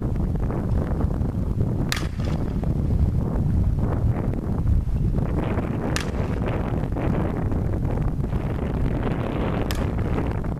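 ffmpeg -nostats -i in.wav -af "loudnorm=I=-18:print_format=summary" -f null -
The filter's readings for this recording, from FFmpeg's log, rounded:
Input Integrated:    -25.1 LUFS
Input True Peak:      -3.8 dBTP
Input LRA:             1.6 LU
Input Threshold:     -35.1 LUFS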